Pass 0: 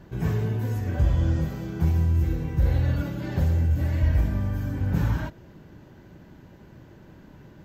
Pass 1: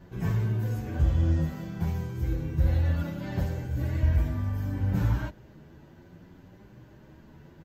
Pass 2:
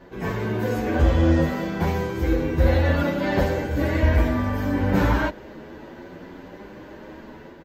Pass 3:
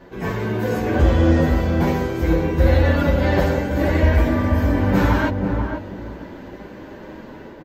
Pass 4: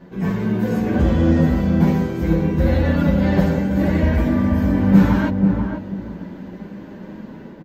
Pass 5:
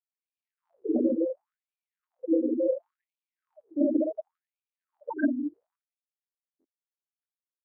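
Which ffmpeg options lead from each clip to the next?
ffmpeg -i in.wav -filter_complex "[0:a]asplit=2[link_01][link_02];[link_02]adelay=8.7,afreqshift=0.65[link_03];[link_01][link_03]amix=inputs=2:normalize=1" out.wav
ffmpeg -i in.wav -af "equalizer=frequency=125:width_type=o:width=1:gain=-10,equalizer=frequency=250:width_type=o:width=1:gain=6,equalizer=frequency=500:width_type=o:width=1:gain=9,equalizer=frequency=1000:width_type=o:width=1:gain=6,equalizer=frequency=2000:width_type=o:width=1:gain=7,equalizer=frequency=4000:width_type=o:width=1:gain=5,dynaudnorm=framelen=190:gausssize=5:maxgain=7dB" out.wav
ffmpeg -i in.wav -filter_complex "[0:a]asplit=2[link_01][link_02];[link_02]adelay=487,lowpass=frequency=920:poles=1,volume=-4dB,asplit=2[link_03][link_04];[link_04]adelay=487,lowpass=frequency=920:poles=1,volume=0.25,asplit=2[link_05][link_06];[link_06]adelay=487,lowpass=frequency=920:poles=1,volume=0.25[link_07];[link_01][link_03][link_05][link_07]amix=inputs=4:normalize=0,volume=2.5dB" out.wav
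ffmpeg -i in.wav -af "equalizer=frequency=190:width_type=o:width=0.75:gain=14.5,volume=-4dB" out.wav
ffmpeg -i in.wav -af "afftfilt=real='re*gte(hypot(re,im),0.355)':imag='im*gte(hypot(re,im),0.355)':win_size=1024:overlap=0.75,afftfilt=real='re*gte(b*sr/1024,230*pow(2400/230,0.5+0.5*sin(2*PI*0.7*pts/sr)))':imag='im*gte(b*sr/1024,230*pow(2400/230,0.5+0.5*sin(2*PI*0.7*pts/sr)))':win_size=1024:overlap=0.75" out.wav

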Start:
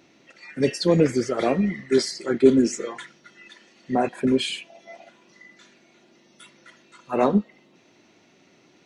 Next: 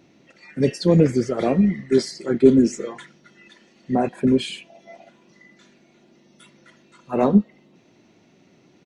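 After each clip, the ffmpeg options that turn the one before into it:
ffmpeg -i in.wav -af "firequalizer=gain_entry='entry(190,0);entry(290,-4);entry(1300,-9)':delay=0.05:min_phase=1,volume=6dB" out.wav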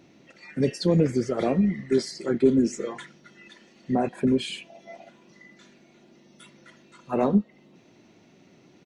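ffmpeg -i in.wav -af "acompressor=threshold=-26dB:ratio=1.5" out.wav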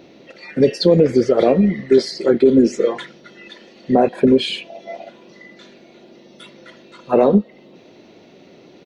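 ffmpeg -i in.wav -af "equalizer=frequency=125:width_type=o:width=1:gain=-3,equalizer=frequency=500:width_type=o:width=1:gain=9,equalizer=frequency=4000:width_type=o:width=1:gain=7,equalizer=frequency=8000:width_type=o:width=1:gain=-9,alimiter=limit=-10dB:level=0:latency=1:release=96,volume=7dB" out.wav

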